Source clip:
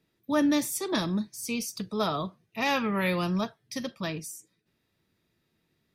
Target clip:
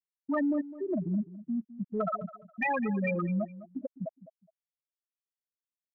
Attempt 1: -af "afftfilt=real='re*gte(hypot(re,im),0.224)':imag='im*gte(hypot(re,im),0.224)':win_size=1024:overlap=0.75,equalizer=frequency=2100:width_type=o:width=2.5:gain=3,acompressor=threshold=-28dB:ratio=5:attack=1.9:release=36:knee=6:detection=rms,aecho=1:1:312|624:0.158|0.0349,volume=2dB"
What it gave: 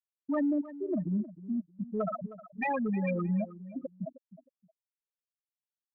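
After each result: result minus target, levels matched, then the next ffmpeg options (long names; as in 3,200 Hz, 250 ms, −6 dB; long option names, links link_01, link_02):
echo 105 ms late; 2,000 Hz band −4.0 dB
-af "afftfilt=real='re*gte(hypot(re,im),0.224)':imag='im*gte(hypot(re,im),0.224)':win_size=1024:overlap=0.75,equalizer=frequency=2100:width_type=o:width=2.5:gain=3,acompressor=threshold=-28dB:ratio=5:attack=1.9:release=36:knee=6:detection=rms,aecho=1:1:207|414:0.158|0.0349,volume=2dB"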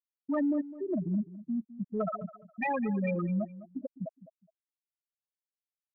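2,000 Hz band −4.0 dB
-af "afftfilt=real='re*gte(hypot(re,im),0.224)':imag='im*gte(hypot(re,im),0.224)':win_size=1024:overlap=0.75,equalizer=frequency=2100:width_type=o:width=2.5:gain=12,acompressor=threshold=-28dB:ratio=5:attack=1.9:release=36:knee=6:detection=rms,aecho=1:1:207|414:0.158|0.0349,volume=2dB"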